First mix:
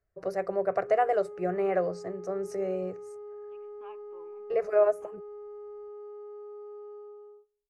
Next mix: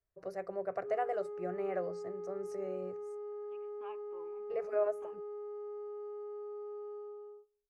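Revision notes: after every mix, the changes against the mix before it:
first voice -9.5 dB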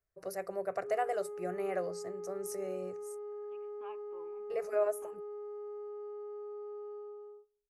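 first voice: remove tape spacing loss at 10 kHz 21 dB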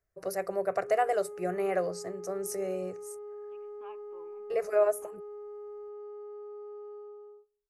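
first voice +6.0 dB

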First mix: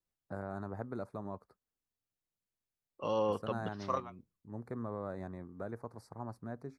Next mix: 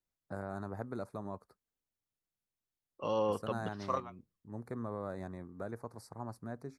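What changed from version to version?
first voice: add treble shelf 4.1 kHz +9 dB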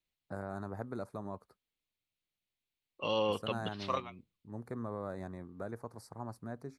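second voice: add high-order bell 3 kHz +11.5 dB 1.3 oct

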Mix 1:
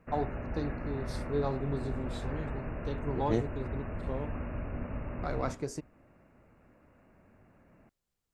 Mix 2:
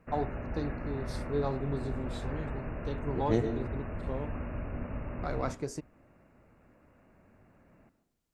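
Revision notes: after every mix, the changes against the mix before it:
second voice: send on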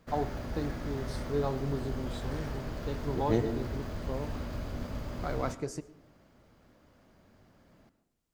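first voice: send on; background: remove brick-wall FIR low-pass 2.9 kHz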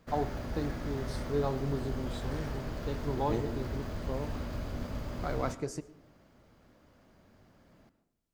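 second voice -6.0 dB

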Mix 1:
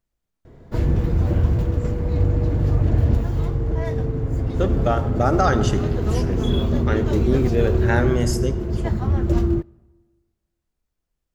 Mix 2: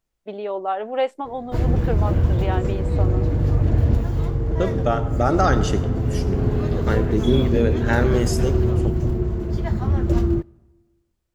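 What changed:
first voice: unmuted; background: entry +0.80 s

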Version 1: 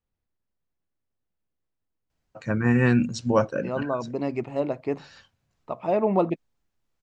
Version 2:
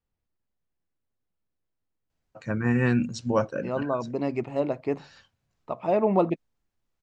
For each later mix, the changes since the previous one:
first voice -3.0 dB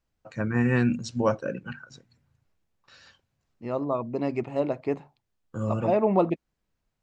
first voice: entry -2.10 s

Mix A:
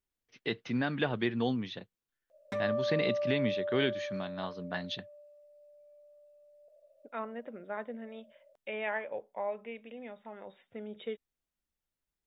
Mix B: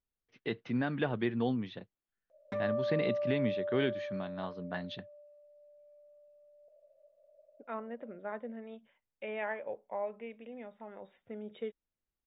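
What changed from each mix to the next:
second voice: entry +0.55 s; master: add tape spacing loss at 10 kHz 20 dB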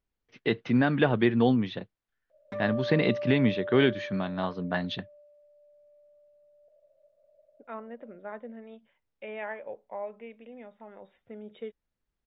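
first voice +9.0 dB

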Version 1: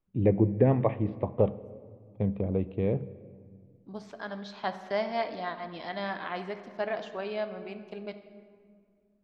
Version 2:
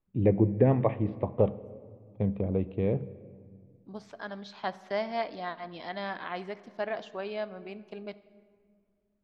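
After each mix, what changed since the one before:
second voice: send -7.5 dB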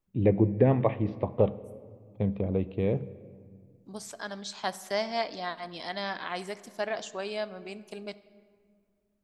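master: remove distance through air 270 m

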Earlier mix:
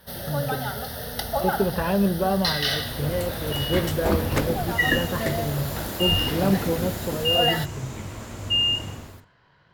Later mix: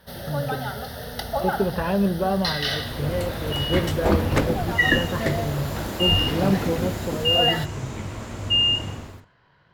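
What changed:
second sound +3.0 dB; master: add treble shelf 7.6 kHz -8.5 dB

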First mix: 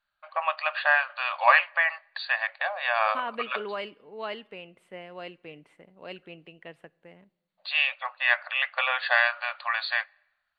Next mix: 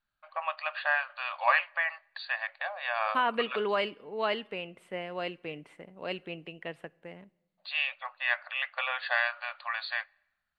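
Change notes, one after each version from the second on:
first voice -6.0 dB; second voice +5.0 dB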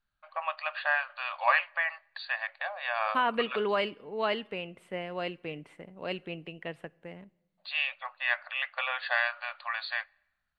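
second voice: add bass shelf 160 Hz +6.5 dB

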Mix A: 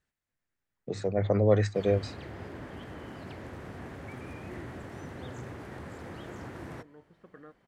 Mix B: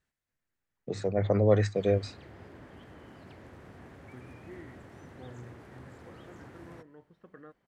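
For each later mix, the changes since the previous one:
background -7.5 dB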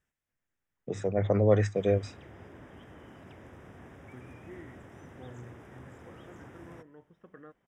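master: add Butterworth band-stop 4.3 kHz, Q 3.5

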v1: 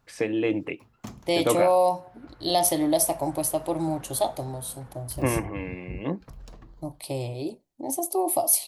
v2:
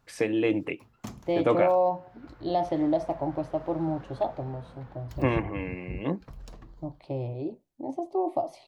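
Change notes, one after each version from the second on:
second voice: add tape spacing loss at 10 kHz 44 dB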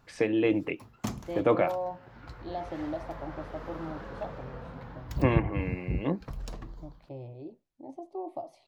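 first voice: add distance through air 69 m; second voice -10.0 dB; background +6.0 dB

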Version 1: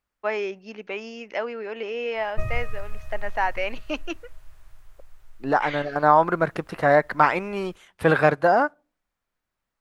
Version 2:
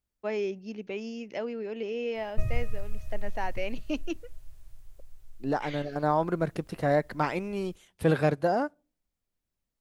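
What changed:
first voice: add bass shelf 250 Hz +9 dB; master: add peaking EQ 1.3 kHz -13.5 dB 2.4 oct

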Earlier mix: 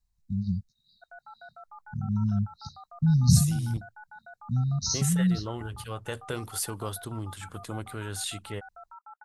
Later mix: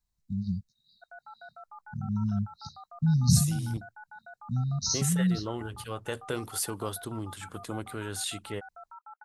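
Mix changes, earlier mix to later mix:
second voice: add peaking EQ 310 Hz +3 dB 1.4 oct; master: add bass shelf 91 Hz -8.5 dB

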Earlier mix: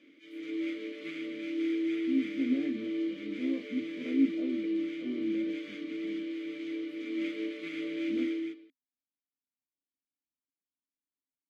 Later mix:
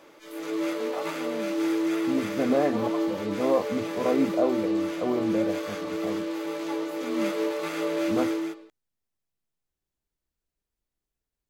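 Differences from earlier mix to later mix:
first voice +9.0 dB; background -6.0 dB; master: remove vowel filter i

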